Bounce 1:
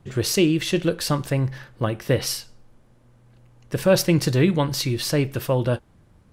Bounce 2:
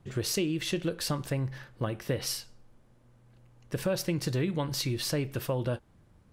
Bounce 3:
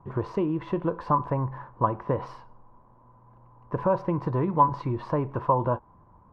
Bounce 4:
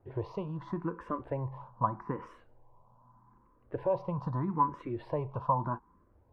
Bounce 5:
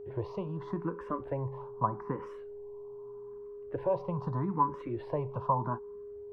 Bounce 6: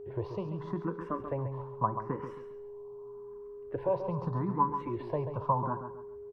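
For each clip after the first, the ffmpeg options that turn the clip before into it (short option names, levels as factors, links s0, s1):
-af "acompressor=threshold=0.0891:ratio=4,volume=0.531"
-af "lowpass=f=1000:t=q:w=12,volume=1.33"
-filter_complex "[0:a]asplit=2[s0][s1];[s1]afreqshift=0.81[s2];[s0][s2]amix=inputs=2:normalize=1,volume=0.596"
-filter_complex "[0:a]acrossover=split=120|660|2000[s0][s1][s2][s3];[s3]alimiter=level_in=21.1:limit=0.0631:level=0:latency=1:release=187,volume=0.0473[s4];[s0][s1][s2][s4]amix=inputs=4:normalize=0,aeval=exprs='val(0)+0.00794*sin(2*PI*410*n/s)':c=same"
-af "aecho=1:1:136|272|408|544:0.355|0.114|0.0363|0.0116"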